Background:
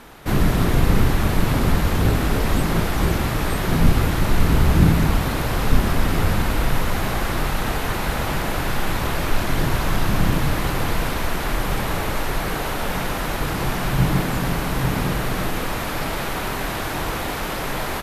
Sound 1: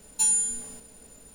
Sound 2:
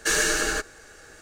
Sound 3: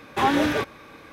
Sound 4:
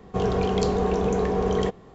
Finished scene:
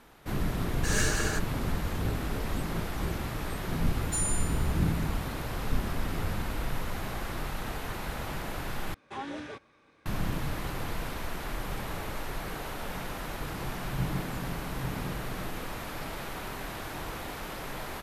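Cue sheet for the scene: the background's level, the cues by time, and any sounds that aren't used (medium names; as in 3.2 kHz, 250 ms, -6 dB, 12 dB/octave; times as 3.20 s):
background -12.5 dB
0.78 s: add 2 -5 dB + random flutter of the level
3.93 s: add 1 -9.5 dB
8.94 s: replace with 3 -17.5 dB + steep low-pass 10 kHz 48 dB/octave
not used: 4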